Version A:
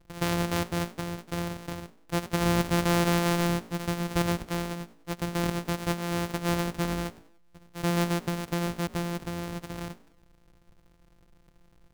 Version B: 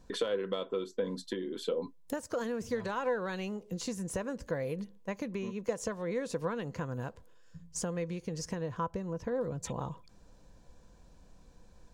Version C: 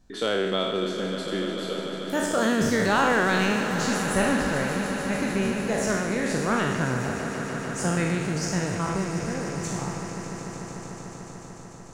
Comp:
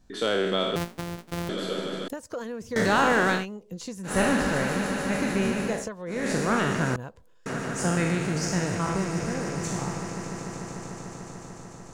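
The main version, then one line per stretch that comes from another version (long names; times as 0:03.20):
C
0:00.76–0:01.49: punch in from A
0:02.08–0:02.76: punch in from B
0:03.38–0:04.11: punch in from B, crossfade 0.16 s
0:05.77–0:06.18: punch in from B, crossfade 0.24 s
0:06.96–0:07.46: punch in from B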